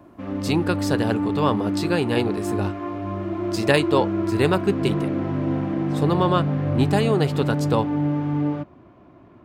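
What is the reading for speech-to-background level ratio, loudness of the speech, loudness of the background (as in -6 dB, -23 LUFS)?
1.0 dB, -24.0 LUFS, -25.0 LUFS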